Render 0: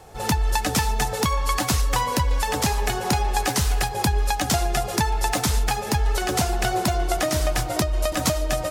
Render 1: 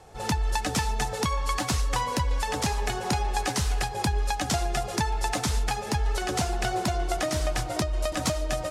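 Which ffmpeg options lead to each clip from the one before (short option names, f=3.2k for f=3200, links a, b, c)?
-af "lowpass=9.9k,volume=-4.5dB"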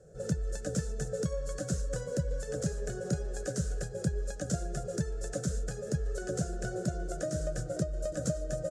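-af "firequalizer=gain_entry='entry(100,0);entry(160,13);entry(240,-3);entry(550,11);entry(880,-28);entry(1500,1);entry(2100,-19);entry(3600,-14);entry(7100,3);entry(14000,-17)':delay=0.05:min_phase=1,volume=-8dB"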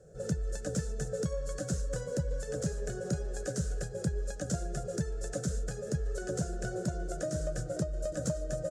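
-af "asoftclip=type=tanh:threshold=-19.5dB"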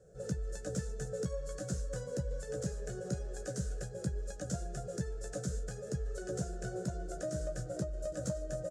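-filter_complex "[0:a]asplit=2[a][b];[b]adelay=16,volume=-8dB[c];[a][c]amix=inputs=2:normalize=0,volume=-5dB"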